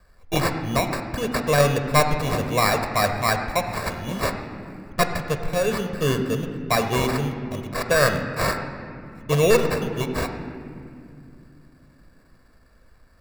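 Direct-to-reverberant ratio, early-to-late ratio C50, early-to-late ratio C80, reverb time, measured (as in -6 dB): 6.0 dB, 7.5 dB, 8.0 dB, 2.5 s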